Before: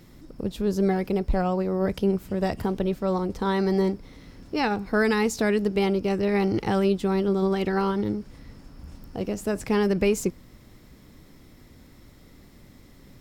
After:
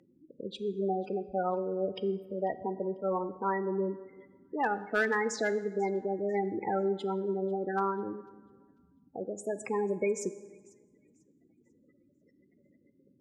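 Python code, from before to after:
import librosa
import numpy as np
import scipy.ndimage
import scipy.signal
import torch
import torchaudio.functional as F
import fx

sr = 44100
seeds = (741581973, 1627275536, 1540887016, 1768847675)

p1 = fx.spec_gate(x, sr, threshold_db=-15, keep='strong')
p2 = fx.weighting(p1, sr, curve='A')
p3 = fx.env_lowpass_down(p2, sr, base_hz=2500.0, full_db=-18.5)
p4 = fx.low_shelf(p3, sr, hz=75.0, db=-11.5)
p5 = np.clip(10.0 ** (18.0 / 20.0) * p4, -1.0, 1.0) / 10.0 ** (18.0 / 20.0)
p6 = p5 + fx.echo_wet_highpass(p5, sr, ms=494, feedback_pct=31, hz=3200.0, wet_db=-22, dry=0)
p7 = fx.rev_plate(p6, sr, seeds[0], rt60_s=1.5, hf_ratio=0.65, predelay_ms=0, drr_db=12.5)
y = p7 * 10.0 ** (-1.5 / 20.0)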